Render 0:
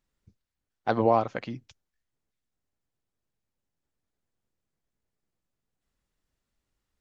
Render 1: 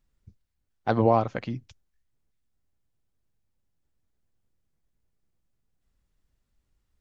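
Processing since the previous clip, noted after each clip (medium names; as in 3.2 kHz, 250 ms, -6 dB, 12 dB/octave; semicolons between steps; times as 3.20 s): bass shelf 150 Hz +11 dB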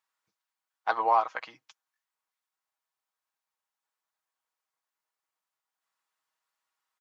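resonant high-pass 1 kHz, resonance Q 2.3; comb 6.3 ms, depth 43%; trim -2 dB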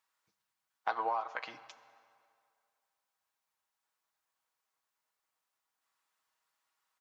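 compression 6:1, threshold -33 dBFS, peak gain reduction 14.5 dB; on a send at -13 dB: reverberation RT60 2.3 s, pre-delay 6 ms; on the sum: trim +2 dB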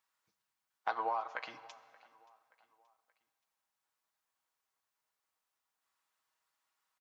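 feedback delay 577 ms, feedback 45%, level -23.5 dB; trim -1.5 dB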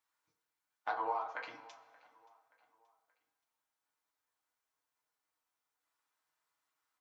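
FDN reverb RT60 0.44 s, low-frequency decay 0.75×, high-frequency decay 0.45×, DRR -0.5 dB; trim -4.5 dB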